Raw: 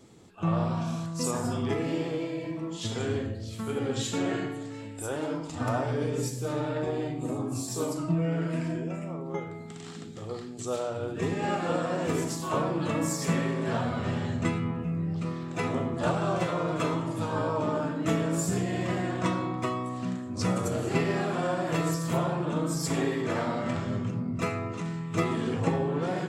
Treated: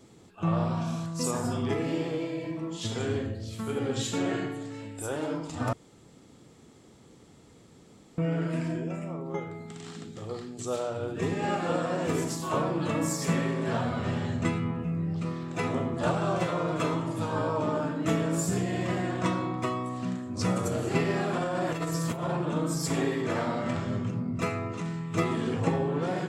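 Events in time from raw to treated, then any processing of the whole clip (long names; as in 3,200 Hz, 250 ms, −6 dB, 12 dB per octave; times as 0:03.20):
0:05.73–0:08.18: fill with room tone
0:21.33–0:22.37: compressor whose output falls as the input rises −29 dBFS, ratio −0.5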